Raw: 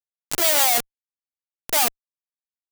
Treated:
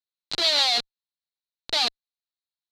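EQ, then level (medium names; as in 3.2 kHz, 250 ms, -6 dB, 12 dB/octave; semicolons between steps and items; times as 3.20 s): resonant low-pass 4.1 kHz, resonance Q 7.8; -6.0 dB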